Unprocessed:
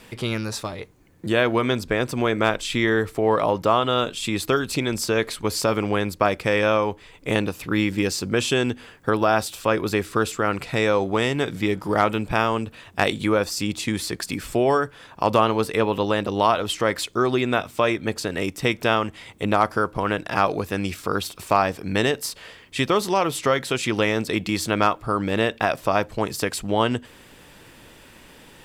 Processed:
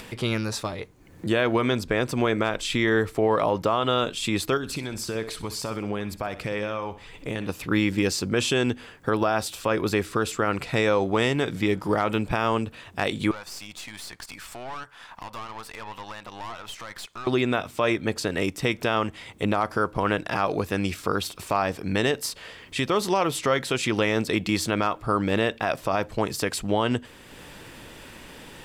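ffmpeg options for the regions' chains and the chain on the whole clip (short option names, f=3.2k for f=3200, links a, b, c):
-filter_complex "[0:a]asettb=1/sr,asplit=3[a][b][c];[a]atrim=end=4.574[d];[b]atrim=start=4.57:end=7.49,asetpts=PTS-STARTPTS,afade=t=in:d=0.004:c=qsin,afade=t=out:st=2.916:d=0.004:c=qsin,acompressor=threshold=-31dB:ratio=2.5:attack=3.2:release=140:knee=1:detection=peak,aphaser=in_gain=1:out_gain=1:delay=1.4:decay=0.28:speed=1.5:type=triangular,aecho=1:1:63|126|189|252:0.2|0.0798|0.0319|0.0128,atrim=end_sample=128772[e];[c]atrim=start=7.486[f];[d][e]acrossfade=d=0.004:c1=hsin:c2=qsin[g];[g][f]acrossfade=d=0.004:c1=qsin:c2=hsin,asettb=1/sr,asplit=3[h][i][j];[h]atrim=end=13.314[k];[i]atrim=start=13.31:end=17.27,asetpts=PTS-STARTPTS,afade=t=in:d=0.004:c=qsin,afade=t=out:st=3.956:d=0.004:c=qsin,lowshelf=f=600:t=q:w=1.5:g=-12,acompressor=threshold=-33dB:ratio=2:attack=3.2:release=140:knee=1:detection=peak,aeval=exprs='(tanh(39.8*val(0)+0.7)-tanh(0.7))/39.8':c=same[l];[j]atrim=start=17.266[m];[k][l]acrossfade=d=0.004:c1=hsin:c2=qsin[n];[n][m]acrossfade=d=0.004:c1=qsin:c2=hsin,highshelf=f=11k:g=-4,alimiter=limit=-11.5dB:level=0:latency=1:release=82,acompressor=mode=upward:threshold=-37dB:ratio=2.5"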